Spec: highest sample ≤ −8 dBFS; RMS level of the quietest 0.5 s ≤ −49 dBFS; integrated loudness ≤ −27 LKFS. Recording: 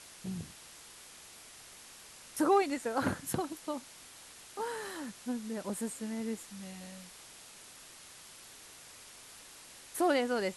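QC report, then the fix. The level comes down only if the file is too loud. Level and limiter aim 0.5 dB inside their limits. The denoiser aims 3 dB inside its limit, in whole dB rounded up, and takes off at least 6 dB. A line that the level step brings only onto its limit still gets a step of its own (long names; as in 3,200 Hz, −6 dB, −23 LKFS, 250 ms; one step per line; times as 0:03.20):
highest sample −17.0 dBFS: in spec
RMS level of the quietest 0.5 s −53 dBFS: in spec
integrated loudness −35.0 LKFS: in spec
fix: no processing needed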